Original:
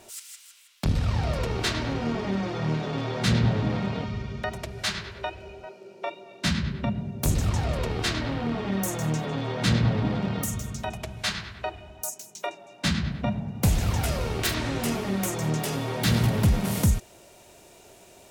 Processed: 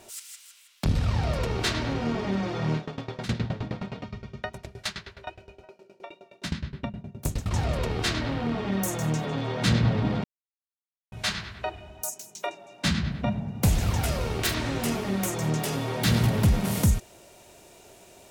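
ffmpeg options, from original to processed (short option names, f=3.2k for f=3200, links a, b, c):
-filter_complex "[0:a]asettb=1/sr,asplit=3[a][b][c];[a]atrim=end=2.774[d];[b]atrim=start=2.77:end=7.51,asetpts=PTS-STARTPTS,afade=t=in:d=0.004:c=qsin,afade=t=out:st=4.736:d=0.004:c=qsin,aeval=exprs='val(0)*pow(10,-20*if(lt(mod(9.6*n/s,1),2*abs(9.6)/1000),1-mod(9.6*n/s,1)/(2*abs(9.6)/1000),(mod(9.6*n/s,1)-2*abs(9.6)/1000)/(1-2*abs(9.6)/1000))/20)':c=same[e];[c]atrim=start=7.506[f];[d][e]acrossfade=d=0.004:c1=hsin:c2=qsin[g];[g][f]acrossfade=d=0.004:c1=qsin:c2=hsin,asettb=1/sr,asplit=3[h][i][j];[h]atrim=end=13.694[k];[i]atrim=start=13.69:end=15.36,asetpts=PTS-STARTPTS,afade=t=in:d=0.004:c=qsin,afade=t=out:st=1.666:d=0.004:c=qsin,aeval=exprs='sgn(val(0))*max(abs(val(0))-0.00188,0)':c=same[l];[j]atrim=start=15.356[m];[k][l]acrossfade=d=0.004:c1=hsin:c2=qsin[n];[n][m]acrossfade=d=0.004:c1=qsin:c2=hsin,asplit=3[o][p][q];[o]atrim=end=10.24,asetpts=PTS-STARTPTS,afade=t=out:st=10.236:d=0.004:c=hsin[r];[p]atrim=start=10.24:end=11.12,asetpts=PTS-STARTPTS,volume=0[s];[q]atrim=start=11.12,asetpts=PTS-STARTPTS,afade=t=in:d=0.004:c=hsin[t];[r][s][t]concat=n=3:v=0:a=1"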